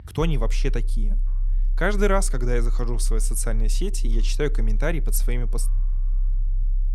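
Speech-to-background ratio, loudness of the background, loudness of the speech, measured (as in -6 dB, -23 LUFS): -1.5 dB, -27.5 LUFS, -29.0 LUFS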